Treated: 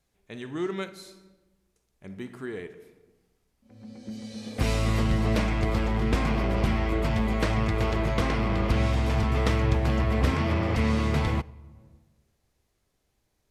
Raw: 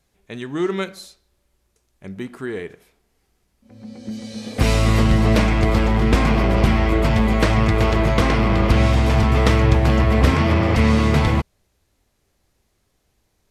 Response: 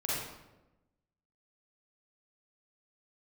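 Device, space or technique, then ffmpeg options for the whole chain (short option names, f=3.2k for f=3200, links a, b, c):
compressed reverb return: -filter_complex "[0:a]asplit=2[a][b];[1:a]atrim=start_sample=2205[c];[b][c]afir=irnorm=-1:irlink=0,acompressor=threshold=-23dB:ratio=4,volume=-12.5dB[d];[a][d]amix=inputs=2:normalize=0,volume=-9dB"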